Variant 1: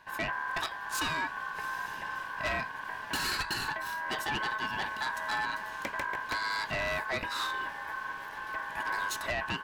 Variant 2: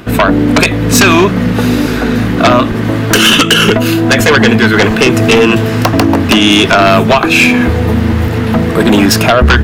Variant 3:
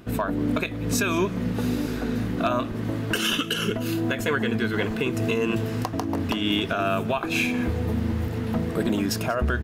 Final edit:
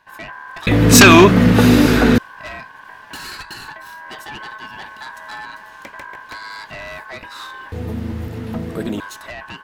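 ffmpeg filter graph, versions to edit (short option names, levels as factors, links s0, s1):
-filter_complex "[0:a]asplit=3[s0][s1][s2];[s0]atrim=end=0.672[s3];[1:a]atrim=start=0.668:end=2.182[s4];[s1]atrim=start=2.178:end=7.722[s5];[2:a]atrim=start=7.718:end=9.002[s6];[s2]atrim=start=8.998[s7];[s3][s4]acrossfade=d=0.004:c1=hsin:c2=hsin[s8];[s8][s5]acrossfade=d=0.004:c1=hsin:c2=hsin[s9];[s9][s6]acrossfade=d=0.004:c1=hsin:c2=hsin[s10];[s10][s7]acrossfade=d=0.004:c1=hsin:c2=hsin"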